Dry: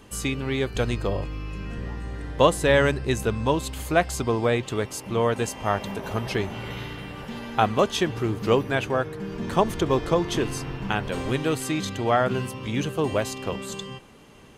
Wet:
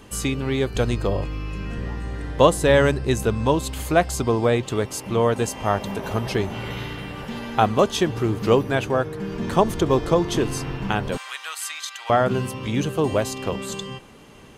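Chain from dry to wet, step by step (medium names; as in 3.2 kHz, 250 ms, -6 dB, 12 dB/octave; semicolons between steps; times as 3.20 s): 11.17–12.10 s: high-pass 1.1 kHz 24 dB/octave; dynamic bell 2.2 kHz, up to -4 dB, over -37 dBFS, Q 0.86; trim +3.5 dB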